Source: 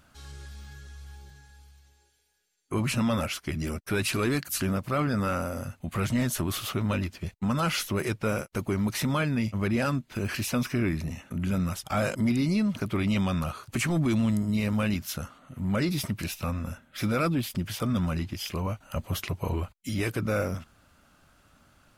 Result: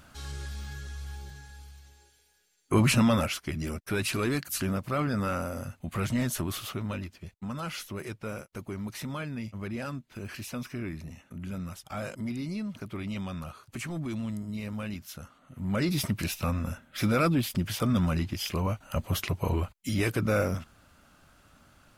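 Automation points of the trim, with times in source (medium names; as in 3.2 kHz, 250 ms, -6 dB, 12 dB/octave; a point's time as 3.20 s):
2.87 s +5.5 dB
3.53 s -2 dB
6.36 s -2 dB
7.22 s -9 dB
15.18 s -9 dB
16.02 s +1.5 dB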